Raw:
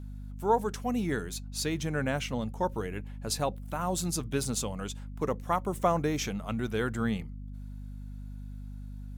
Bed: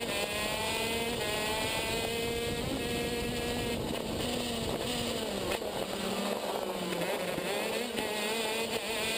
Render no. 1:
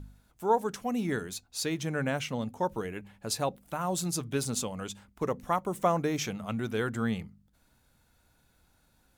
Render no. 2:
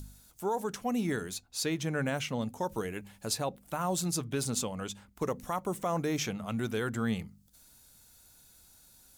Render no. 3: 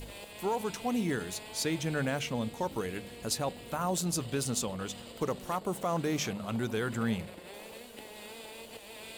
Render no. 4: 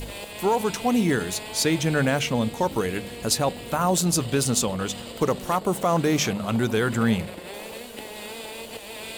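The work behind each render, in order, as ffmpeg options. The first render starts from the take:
-af "bandreject=f=50:t=h:w=4,bandreject=f=100:t=h:w=4,bandreject=f=150:t=h:w=4,bandreject=f=200:t=h:w=4,bandreject=f=250:t=h:w=4"
-filter_complex "[0:a]acrossover=split=4500[s0][s1];[s0]alimiter=limit=0.075:level=0:latency=1[s2];[s1]acompressor=mode=upward:threshold=0.00562:ratio=2.5[s3];[s2][s3]amix=inputs=2:normalize=0"
-filter_complex "[1:a]volume=0.2[s0];[0:a][s0]amix=inputs=2:normalize=0"
-af "volume=2.99"

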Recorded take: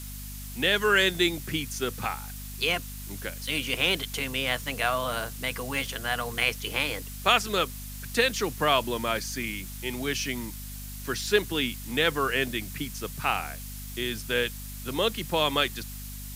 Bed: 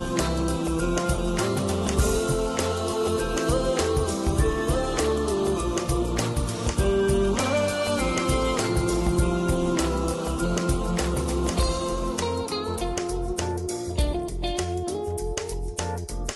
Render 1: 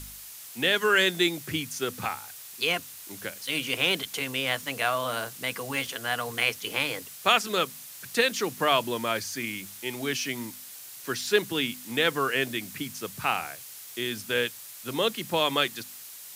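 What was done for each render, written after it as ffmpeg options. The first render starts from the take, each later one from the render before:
-af "bandreject=f=50:t=h:w=4,bandreject=f=100:t=h:w=4,bandreject=f=150:t=h:w=4,bandreject=f=200:t=h:w=4,bandreject=f=250:t=h:w=4"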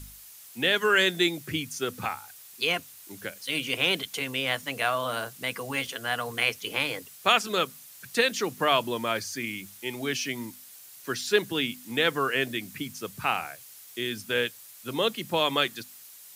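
-af "afftdn=nr=6:nf=-44"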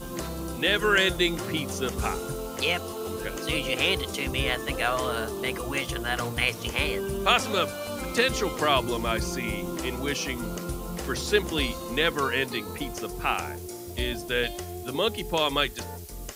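-filter_complex "[1:a]volume=0.355[s0];[0:a][s0]amix=inputs=2:normalize=0"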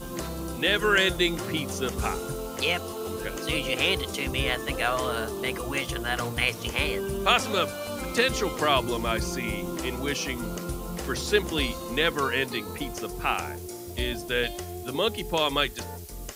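-af anull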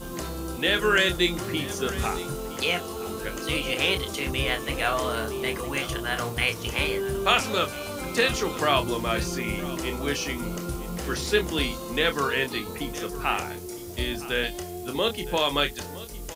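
-filter_complex "[0:a]asplit=2[s0][s1];[s1]adelay=28,volume=0.398[s2];[s0][s2]amix=inputs=2:normalize=0,aecho=1:1:963:0.15"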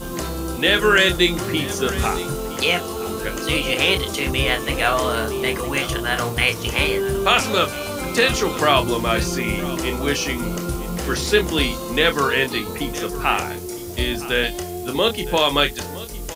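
-af "volume=2.11,alimiter=limit=0.708:level=0:latency=1"

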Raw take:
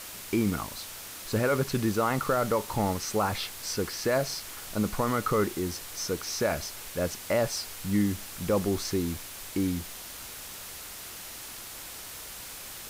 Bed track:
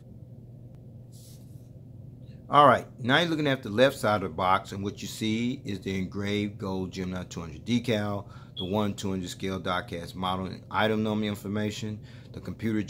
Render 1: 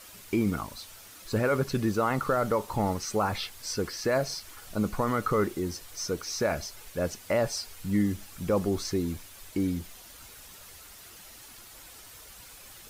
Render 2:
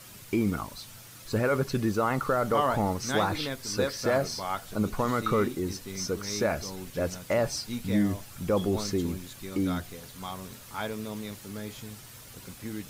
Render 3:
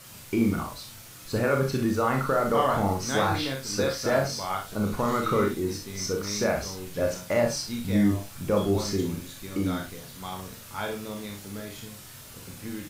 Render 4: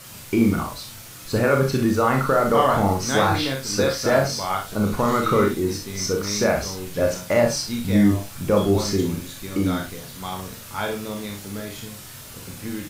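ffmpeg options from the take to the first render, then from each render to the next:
-af "afftdn=nr=9:nf=-42"
-filter_complex "[1:a]volume=0.355[s0];[0:a][s0]amix=inputs=2:normalize=0"
-filter_complex "[0:a]asplit=2[s0][s1];[s1]adelay=43,volume=0.447[s2];[s0][s2]amix=inputs=2:normalize=0,asplit=2[s3][s4];[s4]aecho=0:1:30|60:0.473|0.398[s5];[s3][s5]amix=inputs=2:normalize=0"
-af "volume=1.88"

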